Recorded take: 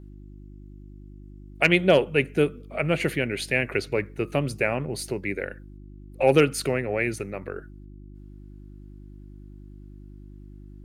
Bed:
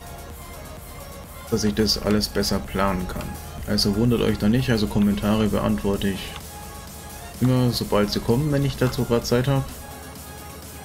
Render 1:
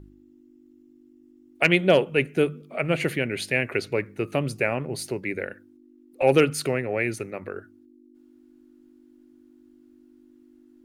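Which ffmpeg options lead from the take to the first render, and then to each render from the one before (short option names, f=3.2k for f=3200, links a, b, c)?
-af "bandreject=f=50:t=h:w=4,bandreject=f=100:t=h:w=4,bandreject=f=150:t=h:w=4,bandreject=f=200:t=h:w=4"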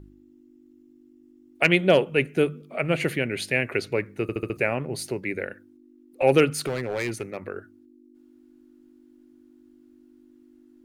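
-filter_complex "[0:a]asettb=1/sr,asplit=3[a][b][c];[a]atrim=end=6.534[d];[b]atrim=start=6.53:end=7.48,asetpts=PTS-STARTPTS,afade=t=in:d=0.004:c=qsin,afade=t=out:st=0.946:d=0.004:c=qsin,volume=23dB,asoftclip=hard,volume=-23dB[e];[c]atrim=start=7.476[f];[d][e]acrossfade=d=0.004:c1=hsin:c2=qsin[g];[g][f]acrossfade=d=0.004:c1=qsin:c2=hsin,asplit=6[h][i][j][k][l][m];[h]atrim=end=4.292[n];[i]atrim=start=4.218:end=4.292[o];[j]atrim=start=4.218:end=4.292[p];[k]atrim=start=4.218:end=4.292[q];[l]atrim=start=4.218:end=4.292[r];[m]atrim=start=4.568[s];[n][o]acrossfade=d=0.004:c1=hsin:c2=hsin[t];[t][p]acrossfade=d=0.004:c1=hsin:c2=hsin[u];[u][q]acrossfade=d=0.004:c1=hsin:c2=hsin[v];[v][r]acrossfade=d=0.004:c1=hsin:c2=hsin[w];[w][s]acrossfade=d=0.004:c1=hsin:c2=hsin"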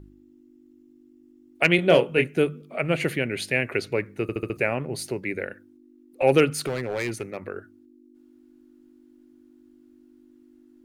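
-filter_complex "[0:a]asettb=1/sr,asplit=3[a][b][c];[a]atrim=end=1.764[d];[b]atrim=start=1.76:end=2.28,asetpts=PTS-STARTPTS,afade=t=in:d=0.004:c=qsin,afade=t=out:st=0.516:d=0.004:c=qsin,asplit=2[e][f];[f]adelay=24,volume=-6dB[g];[e][g]amix=inputs=2:normalize=0,atrim=end_sample=22932[h];[c]atrim=start=2.276[i];[d][h]acrossfade=d=0.004:c1=hsin:c2=qsin[j];[j][i]acrossfade=d=0.004:c1=qsin:c2=hsin"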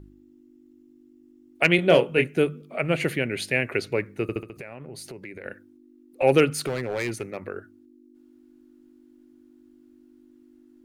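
-filter_complex "[0:a]asettb=1/sr,asplit=3[a][b][c];[a]atrim=end=4.404[d];[b]atrim=start=4.4:end=5.45,asetpts=PTS-STARTPTS,afade=t=in:d=0.004:c=qsin,afade=t=out:st=1.046:d=0.004:c=qsin,acompressor=threshold=-36dB:ratio=6:attack=3.2:release=140:knee=1:detection=peak[e];[c]atrim=start=5.446[f];[d][e]acrossfade=d=0.004:c1=hsin:c2=qsin[g];[g][f]acrossfade=d=0.004:c1=qsin:c2=hsin"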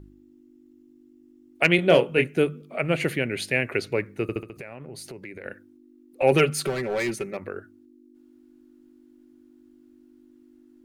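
-filter_complex "[0:a]asettb=1/sr,asplit=3[a][b][c];[a]atrim=end=6.314[d];[b]atrim=start=6.31:end=7.37,asetpts=PTS-STARTPTS,afade=t=in:d=0.004:c=qsin,afade=t=out:st=1.056:d=0.004:c=qsin,aecho=1:1:5.2:0.66,atrim=end_sample=46746[e];[c]atrim=start=7.366[f];[d][e]acrossfade=d=0.004:c1=hsin:c2=qsin[g];[g][f]acrossfade=d=0.004:c1=qsin:c2=hsin"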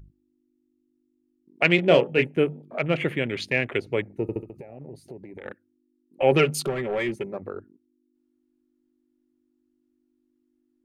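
-af "afwtdn=0.0141,bandreject=f=1.5k:w=17"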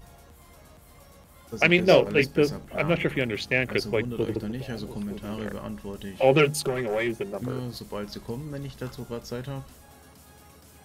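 -filter_complex "[1:a]volume=-14dB[a];[0:a][a]amix=inputs=2:normalize=0"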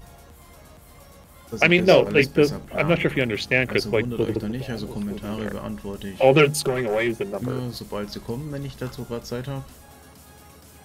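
-af "volume=4dB,alimiter=limit=-3dB:level=0:latency=1"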